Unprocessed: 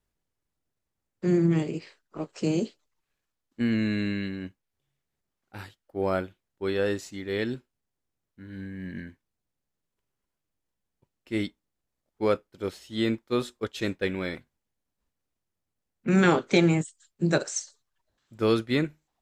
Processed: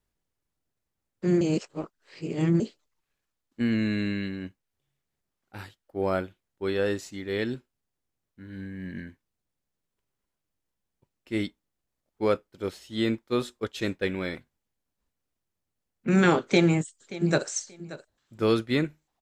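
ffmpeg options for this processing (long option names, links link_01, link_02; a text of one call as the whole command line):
ffmpeg -i in.wav -filter_complex "[0:a]asplit=2[link_01][link_02];[link_02]afade=type=in:start_time=16.42:duration=0.01,afade=type=out:start_time=17.46:duration=0.01,aecho=0:1:580|1160:0.149624|0.0299247[link_03];[link_01][link_03]amix=inputs=2:normalize=0,asplit=3[link_04][link_05][link_06];[link_04]atrim=end=1.412[link_07];[link_05]atrim=start=1.408:end=2.602,asetpts=PTS-STARTPTS,areverse[link_08];[link_06]atrim=start=2.598[link_09];[link_07][link_08]acrossfade=duration=0.004:curve1=hsin:curve2=hsin[link_10];[link_10][link_09]acrossfade=duration=0.004:curve1=hsin:curve2=hsin" out.wav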